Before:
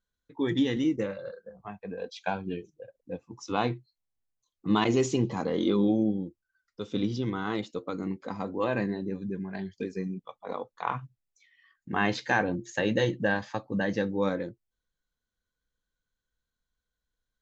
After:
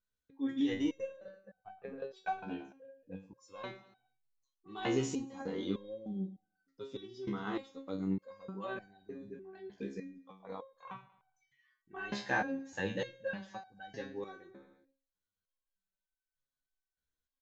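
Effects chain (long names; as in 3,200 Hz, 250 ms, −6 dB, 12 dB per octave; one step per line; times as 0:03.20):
0:00.67–0:02.37: transient designer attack +11 dB, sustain −8 dB
repeating echo 111 ms, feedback 53%, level −19 dB
in parallel at −10.5 dB: soft clipping −15 dBFS, distortion −18 dB
on the sum: step-sequenced resonator 3.3 Hz 68–760 Hz
level −1 dB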